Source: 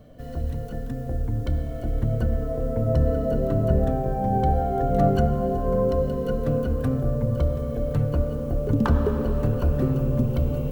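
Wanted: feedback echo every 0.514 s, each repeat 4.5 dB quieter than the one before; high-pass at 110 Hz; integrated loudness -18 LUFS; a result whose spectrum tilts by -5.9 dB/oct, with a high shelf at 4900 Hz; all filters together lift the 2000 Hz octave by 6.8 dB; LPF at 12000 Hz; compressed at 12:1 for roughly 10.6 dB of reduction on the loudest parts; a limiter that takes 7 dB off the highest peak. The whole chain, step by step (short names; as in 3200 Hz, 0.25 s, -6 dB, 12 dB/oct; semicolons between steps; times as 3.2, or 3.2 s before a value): HPF 110 Hz; LPF 12000 Hz; bell 2000 Hz +9 dB; high shelf 4900 Hz +5.5 dB; compressor 12:1, threshold -27 dBFS; limiter -24.5 dBFS; feedback echo 0.514 s, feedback 60%, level -4.5 dB; gain +14 dB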